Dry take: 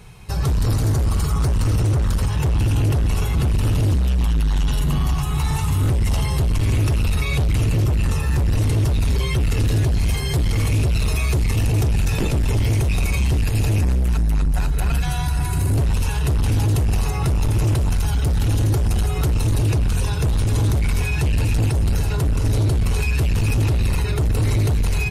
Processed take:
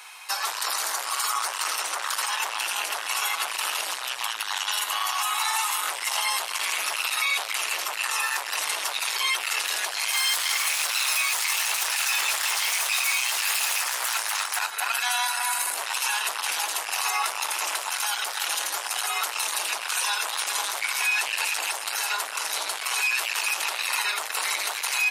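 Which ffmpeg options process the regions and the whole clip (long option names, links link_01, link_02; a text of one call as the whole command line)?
ffmpeg -i in.wav -filter_complex "[0:a]asettb=1/sr,asplit=3[link_01][link_02][link_03];[link_01]atrim=end=10.134[link_04];[link_02]atrim=start=10.13:end=14.59,asetpts=PTS-STARTPTS,afade=type=in:duration=0.004:curve=qsin,afade=type=out:start_time=4.456:duration=0.004:curve=qsin,highshelf=frequency=7000:gain=11,asplit=2[link_05][link_06];[link_06]highpass=frequency=720:poles=1,volume=21dB,asoftclip=type=tanh:threshold=-9.5dB[link_07];[link_05][link_07]amix=inputs=2:normalize=0,lowpass=frequency=3800:poles=1,volume=-6dB,volume=20dB,asoftclip=hard,volume=-20dB[link_08];[link_03]atrim=start=14.586[link_09];[link_04][link_08]acrossfade=duration=0.004:curve1=hsin:curve2=qsin[link_10];[link_10][link_09]acrossfade=duration=0.004:curve1=qsin:curve2=hsin,highpass=frequency=900:width=0.5412,highpass=frequency=900:width=1.3066,alimiter=limit=-24dB:level=0:latency=1:release=16,volume=8.5dB" out.wav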